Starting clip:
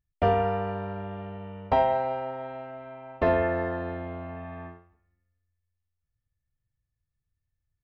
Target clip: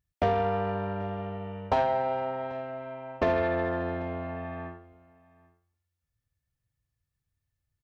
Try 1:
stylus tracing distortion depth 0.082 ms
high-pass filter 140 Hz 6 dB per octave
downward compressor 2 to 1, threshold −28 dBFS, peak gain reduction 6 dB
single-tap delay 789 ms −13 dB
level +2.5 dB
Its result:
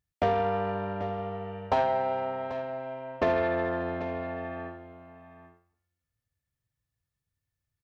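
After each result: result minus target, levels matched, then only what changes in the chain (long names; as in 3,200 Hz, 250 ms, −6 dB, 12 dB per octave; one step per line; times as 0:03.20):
echo-to-direct +10 dB; 125 Hz band −3.0 dB
change: single-tap delay 789 ms −23 dB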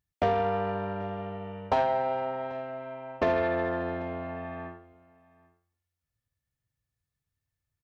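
125 Hz band −3.0 dB
change: high-pass filter 58 Hz 6 dB per octave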